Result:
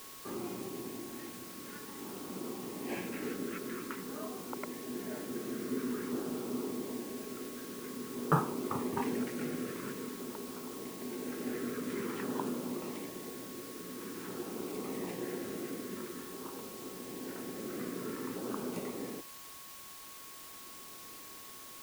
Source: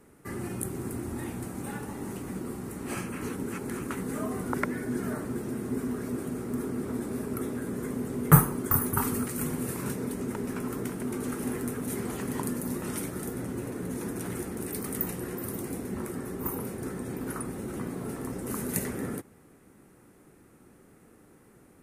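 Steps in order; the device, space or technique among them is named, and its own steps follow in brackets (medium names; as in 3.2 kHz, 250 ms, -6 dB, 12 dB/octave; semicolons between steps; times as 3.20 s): shortwave radio (band-pass 270–3000 Hz; tremolo 0.33 Hz, depth 60%; LFO notch saw down 0.49 Hz 630–2300 Hz; whistle 1.1 kHz -56 dBFS; white noise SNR 10 dB)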